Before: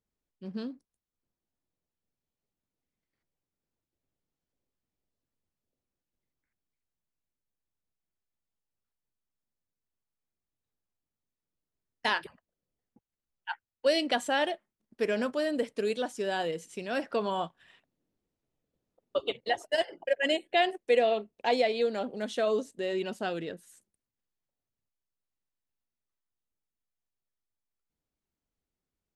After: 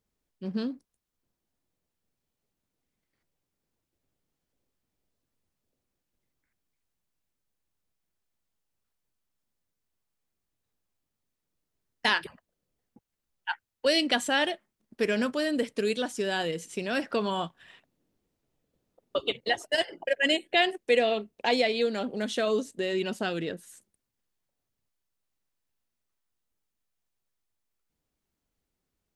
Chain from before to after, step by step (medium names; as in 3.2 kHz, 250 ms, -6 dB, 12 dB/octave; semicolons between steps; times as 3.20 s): dynamic bell 670 Hz, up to -7 dB, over -39 dBFS, Q 0.78; trim +6 dB